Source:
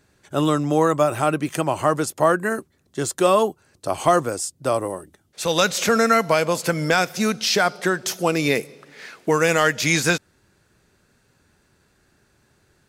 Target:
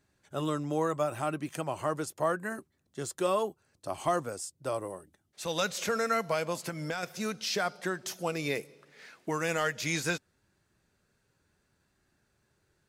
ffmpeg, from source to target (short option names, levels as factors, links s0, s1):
-filter_complex "[0:a]asettb=1/sr,asplit=3[s0][s1][s2];[s0]atrim=end=6.564[s3];[s1]atrim=start=6.56:end=7.03,asetpts=PTS-STARTPTS,afade=t=in:d=0.004:c=qsin,afade=t=out:st=0.466:d=0.004:c=qsin,acompressor=threshold=0.112:ratio=6[s4];[s2]atrim=start=7.026[s5];[s3][s4]acrossfade=d=0.004:c1=hsin:c2=qsin[s6];[s6][s5]acrossfade=d=0.004:c1=qsin:c2=hsin,flanger=delay=1:depth=1.1:regen=-76:speed=0.75:shape=sinusoidal,volume=0.422"